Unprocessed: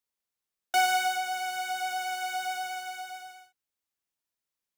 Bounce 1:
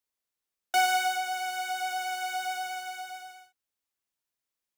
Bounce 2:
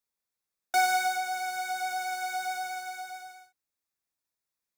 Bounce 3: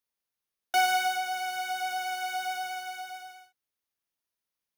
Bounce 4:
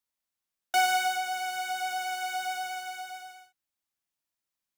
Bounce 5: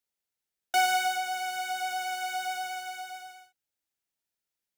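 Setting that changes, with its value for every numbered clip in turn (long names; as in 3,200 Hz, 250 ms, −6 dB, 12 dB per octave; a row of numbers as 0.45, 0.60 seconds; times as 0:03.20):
notch filter, centre frequency: 160, 3,000, 7,600, 440, 1,100 Hertz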